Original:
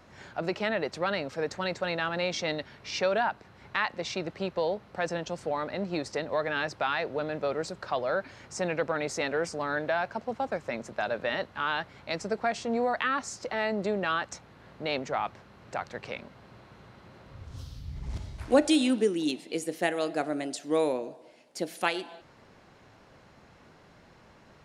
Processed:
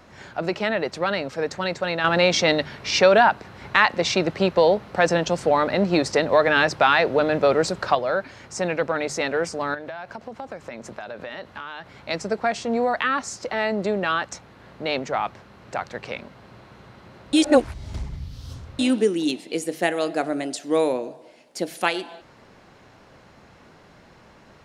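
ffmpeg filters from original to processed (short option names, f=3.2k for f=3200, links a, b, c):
-filter_complex "[0:a]asettb=1/sr,asplit=3[a][b][c];[a]atrim=end=2.044[d];[b]atrim=start=2.04:end=7.95,asetpts=PTS-STARTPTS,afade=t=in:d=0.004:c=qsin,afade=t=out:st=5.906:d=0.004:c=qsin,acontrast=65[e];[c]atrim=start=7.946[f];[d][e]acrossfade=d=0.004:c1=hsin:c2=qsin[g];[g][f]acrossfade=d=0.004:c1=qsin:c2=hsin,asettb=1/sr,asplit=3[h][i][j];[h]atrim=end=9.744[k];[i]atrim=start=9.74:end=11.95,asetpts=PTS-STARTPTS,afade=t=in:d=0.004:c=qsin,afade=t=out:st=2.206:d=0.004:c=qsin,acompressor=threshold=-36dB:ratio=8:attack=3.2:release=140:knee=1:detection=peak[l];[j]atrim=start=11.946[m];[k][l]acrossfade=d=0.004:c1=hsin:c2=qsin[n];[n][m]acrossfade=d=0.004:c1=qsin:c2=hsin,asplit=3[o][p][q];[o]atrim=end=17.332[r];[p]atrim=start=17.328:end=18.792,asetpts=PTS-STARTPTS,areverse[s];[q]atrim=start=18.788[t];[r][s]acrossfade=d=0.004:c1=hsin:c2=hsin[u];[u][t]acrossfade=d=0.004:c1=hsin:c2=hsin,bandreject=f=50:t=h:w=6,bandreject=f=100:t=h:w=6,bandreject=f=150:t=h:w=6,volume=5.5dB"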